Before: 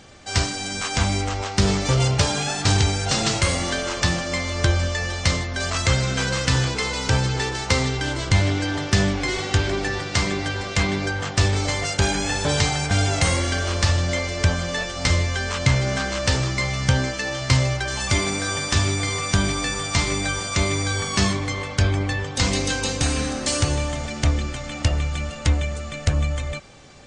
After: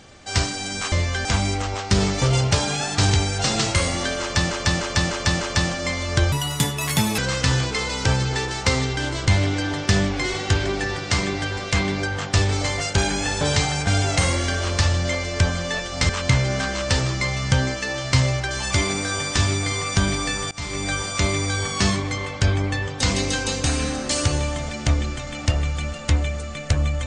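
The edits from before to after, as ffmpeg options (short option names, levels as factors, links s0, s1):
-filter_complex "[0:a]asplit=11[s0][s1][s2][s3][s4][s5][s6][s7][s8][s9][s10];[s0]atrim=end=0.922[s11];[s1]atrim=start=15.128:end=15.462[s12];[s2]atrim=start=0.918:end=4.182[s13];[s3]atrim=start=3.878:end=4.182[s14];[s4]atrim=start=3.878:end=4.182[s15];[s5]atrim=start=3.878:end=4.182[s16];[s6]atrim=start=3.878:end=4.794[s17];[s7]atrim=start=4.79:end=6.22,asetpts=PTS-STARTPTS,asetrate=73206,aresample=44100[s18];[s8]atrim=start=6.216:end=15.132[s19];[s9]atrim=start=15.458:end=19.88,asetpts=PTS-STARTPTS,afade=t=out:st=4.418:d=0.004:c=hsin:silence=0.0891251[s20];[s10]atrim=start=19.88,asetpts=PTS-STARTPTS,afade=t=in:d=0.41:silence=0.0891251[s21];[s11][s12]acrossfade=d=0.004:c1=hsin:c2=hsin[s22];[s22][s13]acrossfade=d=0.004:c1=hsin:c2=hsin[s23];[s23][s14]acrossfade=d=0.004:c1=hsin:c2=hsin[s24];[s24][s15]acrossfade=d=0.004:c1=hsin:c2=hsin[s25];[s25][s16]acrossfade=d=0.004:c1=hsin:c2=hsin[s26];[s26][s17]acrossfade=d=0.004:c1=hsin:c2=hsin[s27];[s27][s18]acrossfade=d=0.004:c1=hsin:c2=hsin[s28];[s28][s19]acrossfade=d=0.004:c1=hsin:c2=hsin[s29];[s20][s21]concat=n=2:v=0:a=1[s30];[s29][s30]acrossfade=d=0.004:c1=hsin:c2=hsin"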